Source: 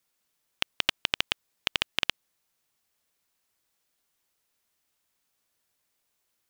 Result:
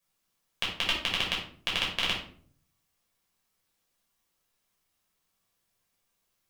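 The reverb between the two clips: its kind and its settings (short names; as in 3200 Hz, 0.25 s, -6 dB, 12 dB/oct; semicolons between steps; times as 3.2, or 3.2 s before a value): shoebox room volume 530 m³, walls furnished, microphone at 5.6 m; gain -7.5 dB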